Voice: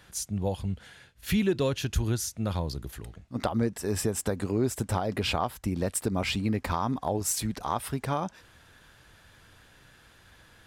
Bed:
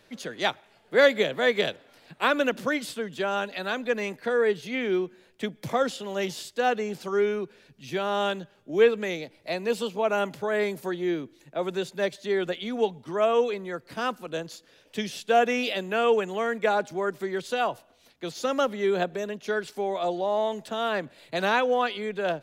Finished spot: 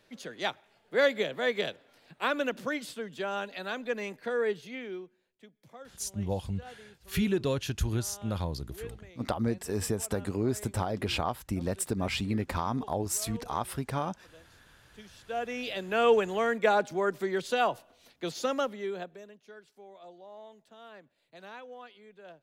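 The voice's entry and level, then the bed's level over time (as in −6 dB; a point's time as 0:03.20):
5.85 s, −2.5 dB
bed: 0:04.53 −6 dB
0:05.46 −24 dB
0:14.81 −24 dB
0:16.04 −0.5 dB
0:18.35 −0.5 dB
0:19.53 −22.5 dB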